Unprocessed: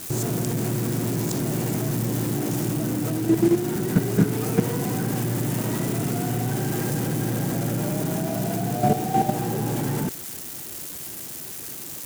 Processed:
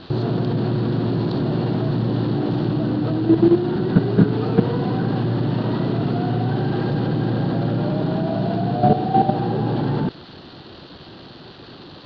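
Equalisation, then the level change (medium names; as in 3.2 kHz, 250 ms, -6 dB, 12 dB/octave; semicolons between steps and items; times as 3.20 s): Chebyshev low-pass 4.4 kHz, order 6; peaking EQ 2.2 kHz -11.5 dB 0.55 oct; +5.5 dB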